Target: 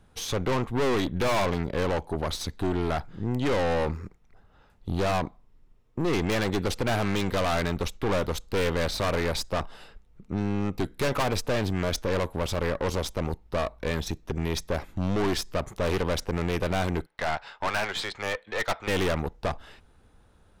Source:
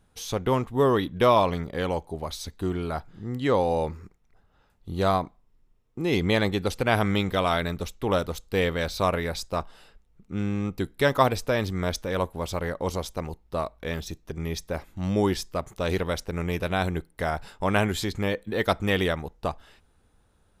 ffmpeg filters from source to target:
ffmpeg -i in.wav -filter_complex "[0:a]highshelf=frequency=6300:gain=-7.5,acrossover=split=290[link_01][link_02];[link_01]acompressor=threshold=-30dB:ratio=6[link_03];[link_03][link_02]amix=inputs=2:normalize=0,asettb=1/sr,asplit=3[link_04][link_05][link_06];[link_04]atrim=end=17.064[link_07];[link_05]atrim=start=17.06:end=18.88,asetpts=PTS-STARTPTS,afade=type=in:duration=0.004:curve=qsin,afade=type=out:start_time=1.816:duration=0.004:curve=qsin,acrossover=split=580 5500:gain=0.0708 1 0.0631[link_08][link_09][link_10];[link_08][link_09][link_10]amix=inputs=3:normalize=0[link_11];[link_06]atrim=start=18.876[link_12];[link_07][link_11]acrossfade=duration=0.004:curve1=hsin:curve2=qsin[link_13];[link_13][link_12]acrossfade=duration=0.004:curve1=qsin:curve2=hsin,aeval=exprs='(tanh(39.8*val(0)+0.65)-tanh(0.65))/39.8':channel_layout=same,volume=9dB" out.wav

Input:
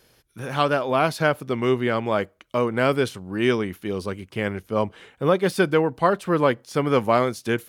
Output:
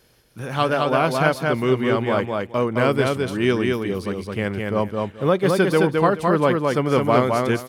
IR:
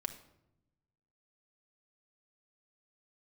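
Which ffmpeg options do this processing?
-filter_complex "[0:a]lowshelf=frequency=200:gain=3.5,asplit=2[link_01][link_02];[link_02]aecho=0:1:214|428|642:0.708|0.135|0.0256[link_03];[link_01][link_03]amix=inputs=2:normalize=0"

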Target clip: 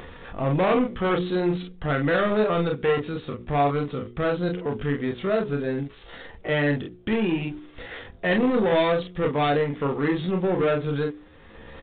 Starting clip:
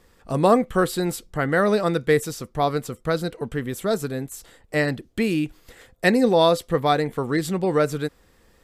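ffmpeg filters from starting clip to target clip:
ffmpeg -i in.wav -filter_complex "[0:a]lowshelf=frequency=110:gain=-2.5,bandreject=frequency=60:width_type=h:width=6,bandreject=frequency=120:width_type=h:width=6,bandreject=frequency=180:width_type=h:width=6,bandreject=frequency=240:width_type=h:width=6,bandreject=frequency=300:width_type=h:width=6,bandreject=frequency=360:width_type=h:width=6,bandreject=frequency=420:width_type=h:width=6,bandreject=frequency=480:width_type=h:width=6,asplit=2[link_01][link_02];[link_02]acompressor=mode=upward:threshold=-21dB:ratio=2.5,volume=-2dB[link_03];[link_01][link_03]amix=inputs=2:normalize=0,asoftclip=type=tanh:threshold=-16dB,acrusher=bits=6:mode=log:mix=0:aa=0.000001,asplit=2[link_04][link_05];[link_05]aecho=0:1:11|28:0.141|0.631[link_06];[link_04][link_06]amix=inputs=2:normalize=0,atempo=0.73,aresample=8000,aresample=44100,volume=-3dB" out.wav

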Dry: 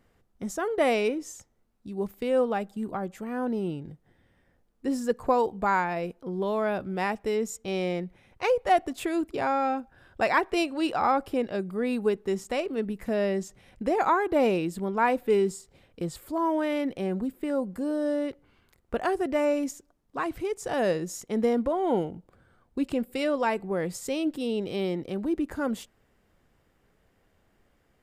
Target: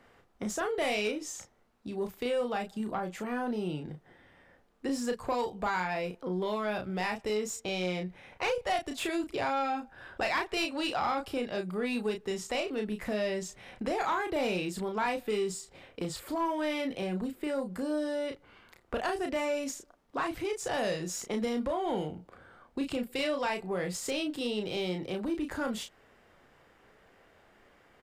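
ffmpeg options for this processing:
ffmpeg -i in.wav -filter_complex "[0:a]acrossover=split=160|3000[link_01][link_02][link_03];[link_02]acompressor=threshold=-41dB:ratio=3[link_04];[link_01][link_04][link_03]amix=inputs=3:normalize=0,asplit=2[link_05][link_06];[link_06]adelay=33,volume=-6dB[link_07];[link_05][link_07]amix=inputs=2:normalize=0,asplit=2[link_08][link_09];[link_09]highpass=frequency=720:poles=1,volume=14dB,asoftclip=type=tanh:threshold=-21dB[link_10];[link_08][link_10]amix=inputs=2:normalize=0,lowpass=frequency=2500:poles=1,volume=-6dB,volume=2dB" out.wav

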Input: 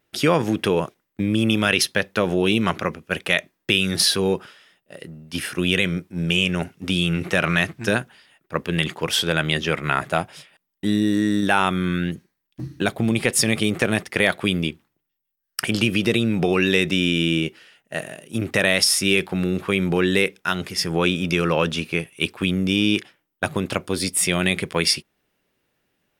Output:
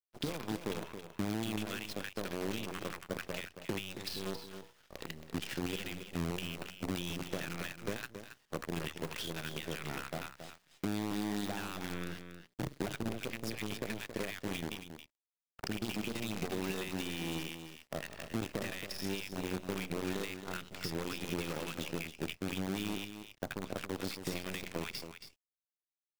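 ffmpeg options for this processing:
ffmpeg -i in.wav -filter_complex "[0:a]lowpass=frequency=5000:width=0.5412,lowpass=frequency=5000:width=1.3066,lowshelf=frequency=82:gain=-7,bandreject=frequency=60:width_type=h:width=6,bandreject=frequency=120:width_type=h:width=6,bandreject=frequency=180:width_type=h:width=6,bandreject=frequency=240:width_type=h:width=6,bandreject=frequency=300:width_type=h:width=6,bandreject=frequency=360:width_type=h:width=6,bandreject=frequency=420:width_type=h:width=6,bandreject=frequency=480:width_type=h:width=6,bandreject=frequency=540:width_type=h:width=6,bandreject=frequency=600:width_type=h:width=6,acrossover=split=1000[link_01][link_02];[link_02]adelay=80[link_03];[link_01][link_03]amix=inputs=2:normalize=0,acompressor=threshold=-31dB:ratio=10,acrusher=bits=6:dc=4:mix=0:aa=0.000001,aeval=exprs='sgn(val(0))*max(abs(val(0))-0.00282,0)':channel_layout=same,acrossover=split=440[link_04][link_05];[link_05]acompressor=threshold=-36dB:ratio=6[link_06];[link_04][link_06]amix=inputs=2:normalize=0,asplit=2[link_07][link_08];[link_08]aecho=0:1:274:0.335[link_09];[link_07][link_09]amix=inputs=2:normalize=0,volume=-2dB" out.wav

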